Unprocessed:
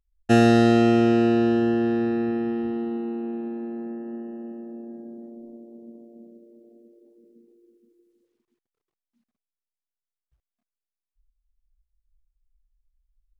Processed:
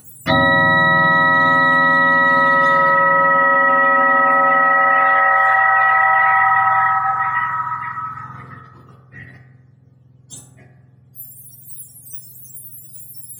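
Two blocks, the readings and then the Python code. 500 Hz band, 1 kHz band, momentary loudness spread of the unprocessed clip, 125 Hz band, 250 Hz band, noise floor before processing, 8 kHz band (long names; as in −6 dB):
+4.0 dB, +20.5 dB, 21 LU, +2.0 dB, −5.5 dB, below −85 dBFS, can't be measured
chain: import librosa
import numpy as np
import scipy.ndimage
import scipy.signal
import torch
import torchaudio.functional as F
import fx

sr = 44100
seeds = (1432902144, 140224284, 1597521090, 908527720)

y = fx.octave_mirror(x, sr, pivot_hz=670.0)
y = fx.rev_fdn(y, sr, rt60_s=1.1, lf_ratio=1.3, hf_ratio=0.35, size_ms=12.0, drr_db=-1.5)
y = fx.env_flatten(y, sr, amount_pct=100)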